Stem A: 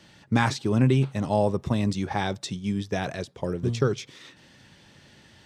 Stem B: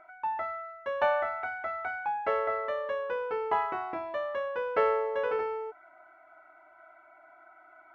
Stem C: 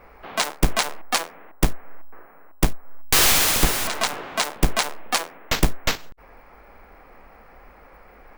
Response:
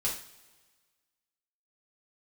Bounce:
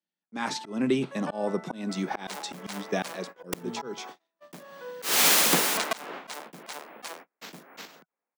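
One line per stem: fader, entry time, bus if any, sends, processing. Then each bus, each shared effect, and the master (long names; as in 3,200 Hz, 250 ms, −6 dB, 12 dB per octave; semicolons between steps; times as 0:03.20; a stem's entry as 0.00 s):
−0.5 dB, 0.00 s, send −22.5 dB, no processing
−13.0 dB, 0.25 s, send −7 dB, high-pass filter 330 Hz 24 dB per octave
−1.0 dB, 1.90 s, no send, no processing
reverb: on, pre-delay 3 ms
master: noise gate −36 dBFS, range −40 dB; Butterworth high-pass 170 Hz 48 dB per octave; volume swells 250 ms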